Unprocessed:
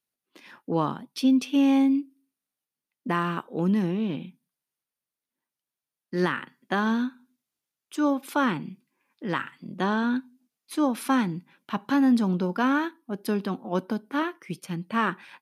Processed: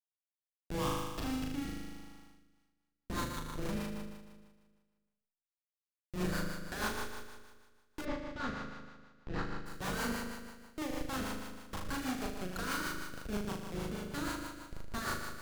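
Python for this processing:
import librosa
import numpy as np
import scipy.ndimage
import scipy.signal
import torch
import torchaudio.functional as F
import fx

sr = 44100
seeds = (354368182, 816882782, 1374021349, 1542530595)

p1 = fx.dereverb_blind(x, sr, rt60_s=2.0)
p2 = fx.highpass(p1, sr, hz=390.0, slope=6)
p3 = fx.dereverb_blind(p2, sr, rt60_s=0.9)
p4 = fx.peak_eq(p3, sr, hz=1500.0, db=10.0, octaves=0.87)
p5 = fx.schmitt(p4, sr, flips_db=-26.5)
p6 = p5 + fx.room_flutter(p5, sr, wall_m=6.6, rt60_s=1.5, dry=0)
p7 = fx.rev_schroeder(p6, sr, rt60_s=0.42, comb_ms=25, drr_db=11.0)
p8 = fx.rotary_switch(p7, sr, hz=0.75, then_hz=6.3, switch_at_s=2.1)
p9 = fx.air_absorb(p8, sr, metres=180.0, at=(8.04, 9.65), fade=0.02)
y = F.gain(torch.from_numpy(p9), -7.0).numpy()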